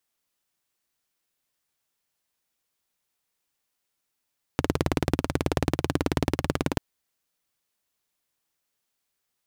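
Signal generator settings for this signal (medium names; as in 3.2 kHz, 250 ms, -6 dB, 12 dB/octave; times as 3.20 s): single-cylinder engine model, steady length 2.19 s, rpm 2200, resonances 86/140/270 Hz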